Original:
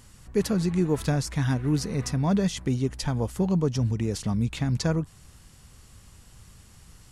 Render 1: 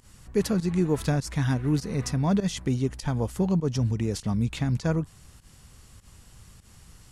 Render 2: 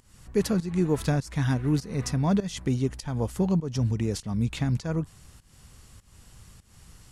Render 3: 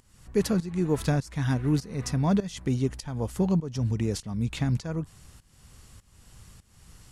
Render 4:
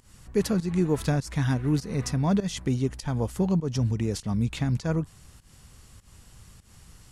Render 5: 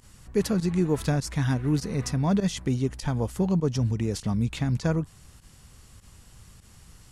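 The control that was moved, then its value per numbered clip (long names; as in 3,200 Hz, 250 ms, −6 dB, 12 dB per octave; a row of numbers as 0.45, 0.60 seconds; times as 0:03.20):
fake sidechain pumping, release: 102, 282, 463, 173, 60 milliseconds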